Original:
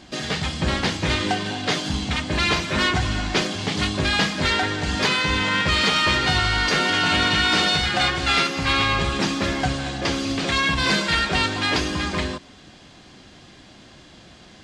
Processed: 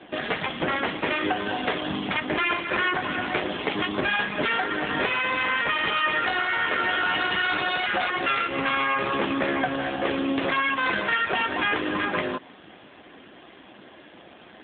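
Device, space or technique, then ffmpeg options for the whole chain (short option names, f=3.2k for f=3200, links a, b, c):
voicemail: -af "highpass=300,lowpass=2.9k,acompressor=threshold=-24dB:ratio=10,volume=6dB" -ar 8000 -c:a libopencore_amrnb -b:a 7400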